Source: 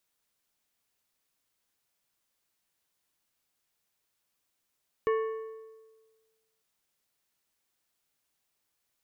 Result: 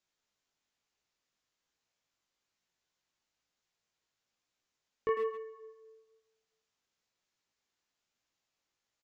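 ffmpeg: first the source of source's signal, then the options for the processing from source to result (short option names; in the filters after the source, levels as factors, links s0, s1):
-f lavfi -i "aevalsrc='0.075*pow(10,-3*t/1.45)*sin(2*PI*443*t)+0.0316*pow(10,-3*t/1.102)*sin(2*PI*1107.5*t)+0.0133*pow(10,-3*t/0.957)*sin(2*PI*1772*t)+0.00562*pow(10,-3*t/0.895)*sin(2*PI*2215*t)+0.00237*pow(10,-3*t/0.827)*sin(2*PI*2879.5*t)':d=1.55:s=44100"
-filter_complex "[0:a]flanger=delay=16.5:depth=3.9:speed=1.1,aresample=16000,aresample=44100,asplit=2[s0][s1];[s1]adelay=100,highpass=300,lowpass=3400,asoftclip=type=hard:threshold=0.0299,volume=0.316[s2];[s0][s2]amix=inputs=2:normalize=0"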